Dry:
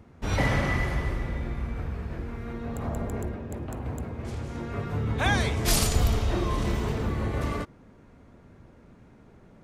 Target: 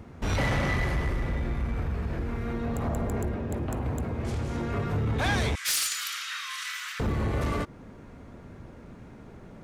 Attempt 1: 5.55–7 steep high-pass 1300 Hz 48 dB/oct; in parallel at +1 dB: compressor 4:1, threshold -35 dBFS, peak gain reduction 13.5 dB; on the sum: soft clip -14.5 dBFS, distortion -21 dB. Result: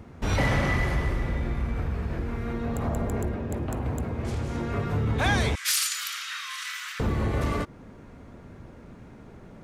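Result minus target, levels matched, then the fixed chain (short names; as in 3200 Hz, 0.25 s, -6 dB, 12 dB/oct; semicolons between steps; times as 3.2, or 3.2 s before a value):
soft clip: distortion -8 dB
5.55–7 steep high-pass 1300 Hz 48 dB/oct; in parallel at +1 dB: compressor 4:1, threshold -35 dBFS, peak gain reduction 13.5 dB; on the sum: soft clip -21 dBFS, distortion -13 dB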